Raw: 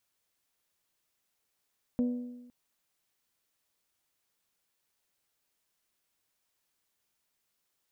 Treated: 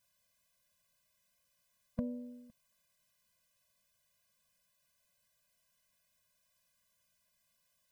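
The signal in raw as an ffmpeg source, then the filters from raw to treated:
-f lavfi -i "aevalsrc='0.0668*pow(10,-3*t/1.07)*sin(2*PI*245*t)+0.0188*pow(10,-3*t/0.869)*sin(2*PI*490*t)+0.00531*pow(10,-3*t/0.823)*sin(2*PI*588*t)+0.0015*pow(10,-3*t/0.77)*sin(2*PI*735*t)+0.000422*pow(10,-3*t/0.706)*sin(2*PI*980*t)':d=0.51:s=44100"
-filter_complex "[0:a]asplit=2[s0][s1];[s1]acompressor=threshold=0.0112:ratio=6,volume=0.891[s2];[s0][s2]amix=inputs=2:normalize=0,afftfilt=real='re*eq(mod(floor(b*sr/1024/240),2),0)':imag='im*eq(mod(floor(b*sr/1024/240),2),0)':win_size=1024:overlap=0.75"

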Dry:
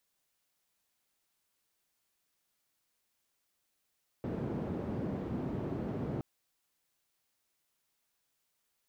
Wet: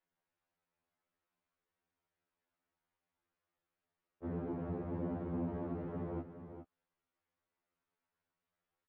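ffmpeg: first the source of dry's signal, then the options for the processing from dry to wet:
-f lavfi -i "anoisesrc=c=white:d=1.97:r=44100:seed=1,highpass=f=100,lowpass=f=280,volume=-11.4dB"
-filter_complex "[0:a]lowpass=1700,asplit=2[s0][s1];[s1]aecho=0:1:412:0.335[s2];[s0][s2]amix=inputs=2:normalize=0,afftfilt=real='re*2*eq(mod(b,4),0)':imag='im*2*eq(mod(b,4),0)':win_size=2048:overlap=0.75"

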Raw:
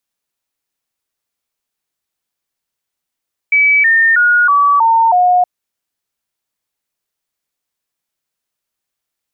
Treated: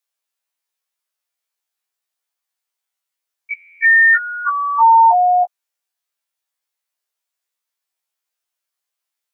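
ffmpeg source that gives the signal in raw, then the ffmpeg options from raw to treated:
-f lavfi -i "aevalsrc='0.447*clip(min(mod(t,0.32),0.32-mod(t,0.32))/0.005,0,1)*sin(2*PI*2290*pow(2,-floor(t/0.32)/3)*mod(t,0.32))':d=1.92:s=44100"
-af "highpass=580,afftfilt=real='re*1.73*eq(mod(b,3),0)':imag='im*1.73*eq(mod(b,3),0)':win_size=2048:overlap=0.75"

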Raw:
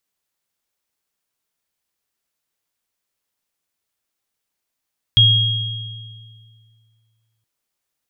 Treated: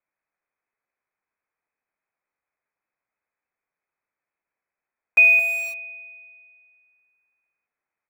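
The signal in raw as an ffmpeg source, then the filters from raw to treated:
-f lavfi -i "aevalsrc='0.251*pow(10,-3*t/2.3)*sin(2*PI*112*t)+0.398*pow(10,-3*t/1.73)*sin(2*PI*3270*t)':d=2.27:s=44100"
-filter_complex "[0:a]aecho=1:1:78|219:0.211|0.237,lowpass=f=2200:t=q:w=0.5098,lowpass=f=2200:t=q:w=0.6013,lowpass=f=2200:t=q:w=0.9,lowpass=f=2200:t=q:w=2.563,afreqshift=-2600,asplit=2[s0][s1];[s1]aeval=exprs='val(0)*gte(abs(val(0)),0.0316)':c=same,volume=0.596[s2];[s0][s2]amix=inputs=2:normalize=0"

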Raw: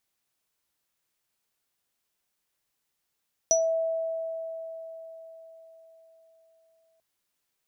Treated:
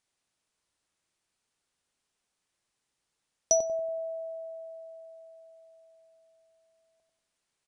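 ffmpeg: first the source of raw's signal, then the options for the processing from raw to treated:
-f lavfi -i "aevalsrc='0.0944*pow(10,-3*t/4.62)*sin(2*PI*653*t)+0.168*pow(10,-3*t/0.21)*sin(2*PI*5890*t)':d=3.49:s=44100"
-filter_complex "[0:a]asplit=2[s0][s1];[s1]adelay=94,lowpass=f=1100:p=1,volume=0.631,asplit=2[s2][s3];[s3]adelay=94,lowpass=f=1100:p=1,volume=0.5,asplit=2[s4][s5];[s5]adelay=94,lowpass=f=1100:p=1,volume=0.5,asplit=2[s6][s7];[s7]adelay=94,lowpass=f=1100:p=1,volume=0.5,asplit=2[s8][s9];[s9]adelay=94,lowpass=f=1100:p=1,volume=0.5,asplit=2[s10][s11];[s11]adelay=94,lowpass=f=1100:p=1,volume=0.5[s12];[s0][s2][s4][s6][s8][s10][s12]amix=inputs=7:normalize=0,aresample=22050,aresample=44100"

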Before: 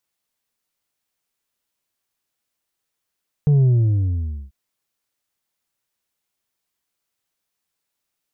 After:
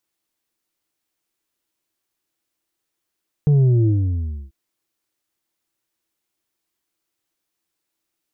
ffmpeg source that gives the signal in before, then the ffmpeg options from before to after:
-f lavfi -i "aevalsrc='0.251*clip((1.04-t)/0.88,0,1)*tanh(1.58*sin(2*PI*150*1.04/log(65/150)*(exp(log(65/150)*t/1.04)-1)))/tanh(1.58)':d=1.04:s=44100"
-af "equalizer=f=330:w=5.2:g=12"

